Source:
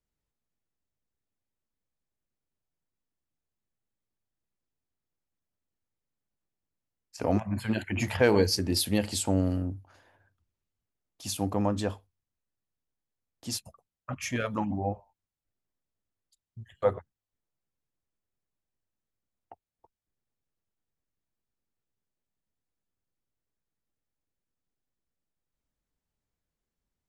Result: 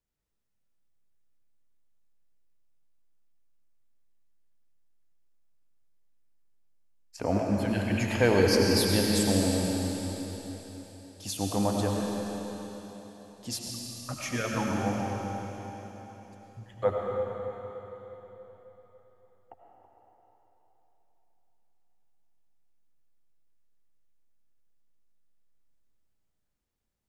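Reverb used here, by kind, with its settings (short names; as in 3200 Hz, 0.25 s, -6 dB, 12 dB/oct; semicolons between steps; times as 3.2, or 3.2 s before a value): digital reverb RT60 4 s, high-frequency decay 1×, pre-delay 55 ms, DRR -1.5 dB; gain -1.5 dB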